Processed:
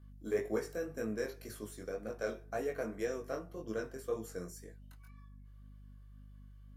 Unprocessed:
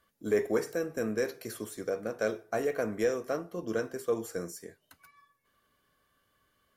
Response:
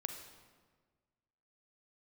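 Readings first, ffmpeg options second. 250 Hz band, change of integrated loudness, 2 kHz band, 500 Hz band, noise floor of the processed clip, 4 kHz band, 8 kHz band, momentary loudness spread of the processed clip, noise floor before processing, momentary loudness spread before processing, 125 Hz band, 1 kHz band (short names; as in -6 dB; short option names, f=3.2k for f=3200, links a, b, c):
-6.5 dB, -6.5 dB, -6.5 dB, -7.0 dB, -54 dBFS, -7.0 dB, -7.0 dB, 20 LU, -74 dBFS, 9 LU, -3.5 dB, -6.5 dB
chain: -af "aeval=exprs='val(0)+0.00398*(sin(2*PI*50*n/s)+sin(2*PI*2*50*n/s)/2+sin(2*PI*3*50*n/s)/3+sin(2*PI*4*50*n/s)/4+sin(2*PI*5*50*n/s)/5)':c=same,flanger=delay=18.5:depth=3.8:speed=1.9,volume=-4dB"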